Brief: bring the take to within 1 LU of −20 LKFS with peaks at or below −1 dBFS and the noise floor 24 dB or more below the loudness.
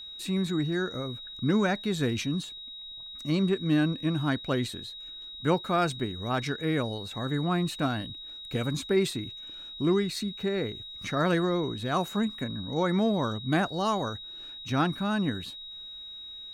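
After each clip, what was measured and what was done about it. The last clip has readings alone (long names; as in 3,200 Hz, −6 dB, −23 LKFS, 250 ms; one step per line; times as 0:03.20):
interfering tone 3,800 Hz; level of the tone −40 dBFS; integrated loudness −29.0 LKFS; sample peak −11.5 dBFS; target loudness −20.0 LKFS
→ notch filter 3,800 Hz, Q 30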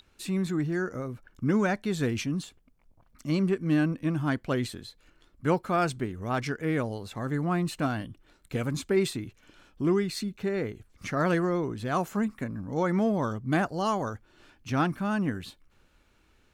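interfering tone none found; integrated loudness −29.5 LKFS; sample peak −12.0 dBFS; target loudness −20.0 LKFS
→ level +9.5 dB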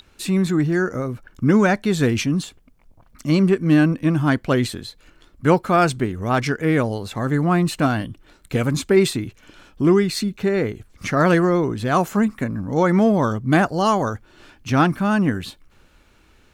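integrated loudness −20.0 LKFS; sample peak −2.5 dBFS; background noise floor −55 dBFS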